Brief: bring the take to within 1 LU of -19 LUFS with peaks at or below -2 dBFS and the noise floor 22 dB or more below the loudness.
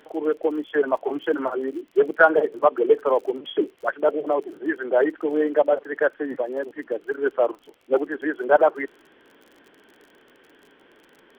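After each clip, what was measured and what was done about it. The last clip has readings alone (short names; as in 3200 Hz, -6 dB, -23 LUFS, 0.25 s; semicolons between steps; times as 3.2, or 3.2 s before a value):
ticks 40/s; loudness -23.0 LUFS; peak -2.0 dBFS; loudness target -19.0 LUFS
-> de-click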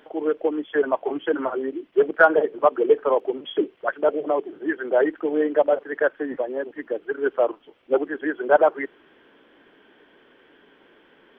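ticks 0.088/s; loudness -23.0 LUFS; peak -2.0 dBFS; loudness target -19.0 LUFS
-> gain +4 dB; limiter -2 dBFS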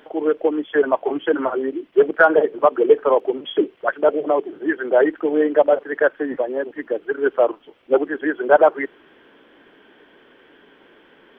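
loudness -19.5 LUFS; peak -2.0 dBFS; noise floor -53 dBFS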